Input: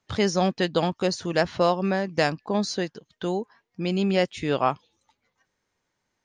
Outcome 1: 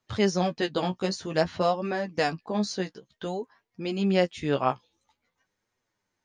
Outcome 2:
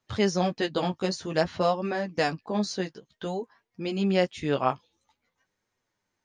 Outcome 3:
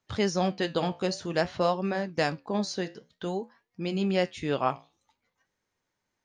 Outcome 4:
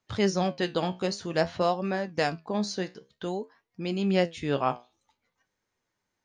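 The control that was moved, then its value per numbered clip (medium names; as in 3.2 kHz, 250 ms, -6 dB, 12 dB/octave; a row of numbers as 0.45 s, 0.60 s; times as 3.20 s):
flange, regen: +18%, -14%, -70%, +68%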